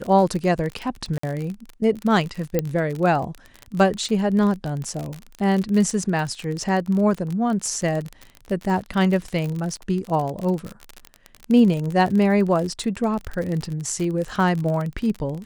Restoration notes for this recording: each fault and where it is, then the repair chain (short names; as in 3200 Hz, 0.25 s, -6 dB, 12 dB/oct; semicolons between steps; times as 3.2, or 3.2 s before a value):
crackle 42/s -25 dBFS
1.18–1.23 gap 54 ms
2.59 pop -8 dBFS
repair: de-click; interpolate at 1.18, 54 ms